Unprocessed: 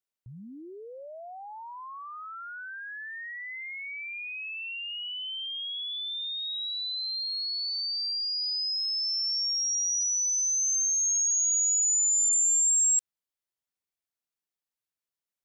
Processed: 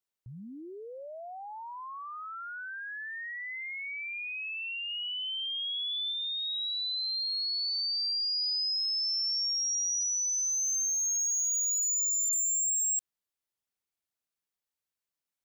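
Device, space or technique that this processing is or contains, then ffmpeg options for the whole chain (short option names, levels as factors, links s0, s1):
clipper into limiter: -filter_complex "[0:a]asoftclip=type=hard:threshold=0.0596,alimiter=level_in=1.5:limit=0.0631:level=0:latency=1,volume=0.668,asettb=1/sr,asplit=3[s0][s1][s2];[s0]atrim=end=4.894[s3];[s1]atrim=start=4.89:end=6.12,asetpts=PTS-STARTPTS,afade=t=in:d=0.004:c=qsin,afade=t=out:st=1.226:d=0.004:c=qsin,equalizer=f=4800:w=2.9:g=6.5[s4];[s2]atrim=start=6.116[s5];[s3][s4]acrossfade=d=0.004:c1=hsin:c2=qsin[s6];[s6][s5]acrossfade=d=0.004:c1=qsin:c2=hsin"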